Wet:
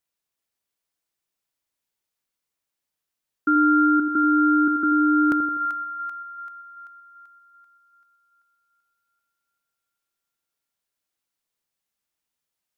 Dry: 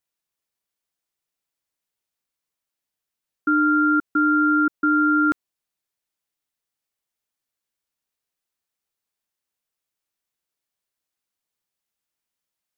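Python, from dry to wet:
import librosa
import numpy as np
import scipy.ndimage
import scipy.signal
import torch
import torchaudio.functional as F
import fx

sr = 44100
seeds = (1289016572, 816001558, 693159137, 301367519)

y = fx.echo_split(x, sr, split_hz=840.0, low_ms=83, high_ms=387, feedback_pct=52, wet_db=-8.0)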